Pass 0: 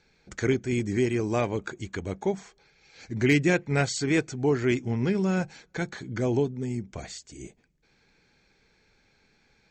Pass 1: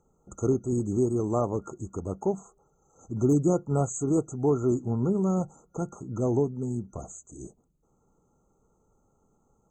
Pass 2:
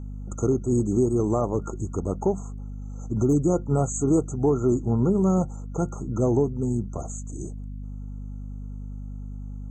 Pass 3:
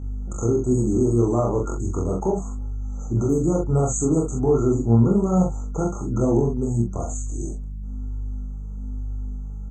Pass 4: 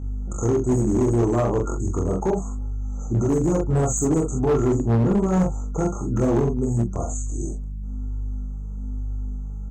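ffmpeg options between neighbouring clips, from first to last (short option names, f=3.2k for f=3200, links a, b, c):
-af "afftfilt=real='re*(1-between(b*sr/4096,1400,6100))':imag='im*(1-between(b*sr/4096,1400,6100))':win_size=4096:overlap=0.75"
-af "alimiter=limit=-18dB:level=0:latency=1:release=275,aeval=exprs='val(0)+0.0112*(sin(2*PI*50*n/s)+sin(2*PI*2*50*n/s)/2+sin(2*PI*3*50*n/s)/3+sin(2*PI*4*50*n/s)/4+sin(2*PI*5*50*n/s)/5)':c=same,acontrast=34"
-filter_complex "[0:a]alimiter=limit=-16.5dB:level=0:latency=1:release=37,flanger=delay=22.5:depth=3.7:speed=1.1,asplit=2[a][b];[b]adelay=43,volume=-3.5dB[c];[a][c]amix=inputs=2:normalize=0,volume=6dB"
-af "asoftclip=type=hard:threshold=-16dB,volume=1dB"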